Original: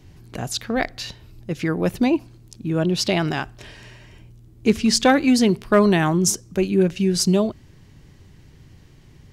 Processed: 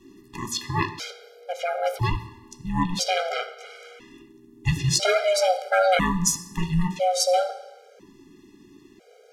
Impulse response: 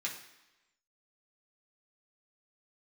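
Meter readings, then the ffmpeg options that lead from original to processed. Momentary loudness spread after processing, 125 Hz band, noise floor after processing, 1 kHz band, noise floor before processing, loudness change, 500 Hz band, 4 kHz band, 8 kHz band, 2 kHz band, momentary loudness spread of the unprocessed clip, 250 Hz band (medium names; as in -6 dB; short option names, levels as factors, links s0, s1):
17 LU, -3.0 dB, -54 dBFS, +1.5 dB, -49 dBFS, -4.0 dB, -2.5 dB, -2.0 dB, -1.0 dB, -2.0 dB, 17 LU, -11.5 dB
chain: -filter_complex "[0:a]aeval=exprs='val(0)*sin(2*PI*360*n/s)':c=same,asplit=2[s0][s1];[1:a]atrim=start_sample=2205,asetrate=36603,aresample=44100[s2];[s1][s2]afir=irnorm=-1:irlink=0,volume=0.631[s3];[s0][s3]amix=inputs=2:normalize=0,afftfilt=real='re*gt(sin(2*PI*0.5*pts/sr)*(1-2*mod(floor(b*sr/1024/410),2)),0)':imag='im*gt(sin(2*PI*0.5*pts/sr)*(1-2*mod(floor(b*sr/1024/410),2)),0)':win_size=1024:overlap=0.75"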